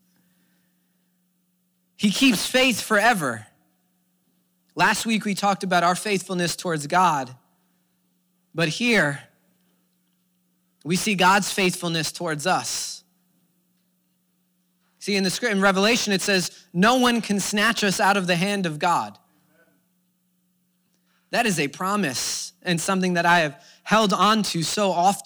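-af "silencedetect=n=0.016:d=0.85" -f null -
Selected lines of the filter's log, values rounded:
silence_start: 0.00
silence_end: 2.00 | silence_duration: 2.00
silence_start: 3.43
silence_end: 4.77 | silence_duration: 1.34
silence_start: 7.33
silence_end: 8.55 | silence_duration: 1.22
silence_start: 9.21
silence_end: 10.85 | silence_duration: 1.64
silence_start: 12.99
silence_end: 15.02 | silence_duration: 2.04
silence_start: 19.11
silence_end: 21.33 | silence_duration: 2.22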